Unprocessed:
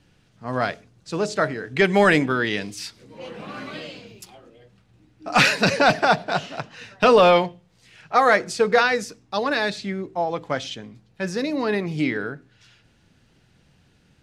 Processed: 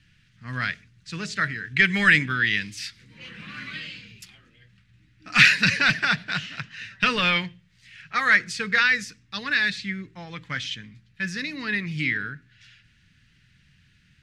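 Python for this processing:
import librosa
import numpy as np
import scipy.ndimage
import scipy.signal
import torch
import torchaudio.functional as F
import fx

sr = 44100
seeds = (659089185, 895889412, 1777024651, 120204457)

y = fx.curve_eq(x, sr, hz=(130.0, 190.0, 390.0, 730.0, 1800.0, 11000.0), db=(0, -3, -16, -23, 6, -6))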